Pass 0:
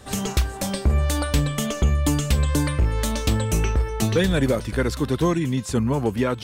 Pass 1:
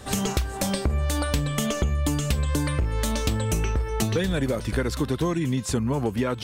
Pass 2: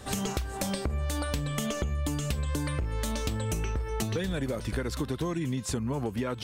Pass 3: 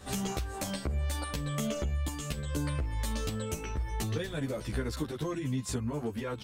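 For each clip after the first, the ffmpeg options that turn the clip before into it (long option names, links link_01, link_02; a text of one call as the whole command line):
ffmpeg -i in.wav -af "acompressor=threshold=-24dB:ratio=6,volume=3dB" out.wav
ffmpeg -i in.wav -af "acompressor=threshold=-25dB:ratio=2.5,volume=-3dB" out.wav
ffmpeg -i in.wav -filter_complex "[0:a]asplit=2[link_01][link_02];[link_02]adelay=11.8,afreqshift=-1.1[link_03];[link_01][link_03]amix=inputs=2:normalize=1" out.wav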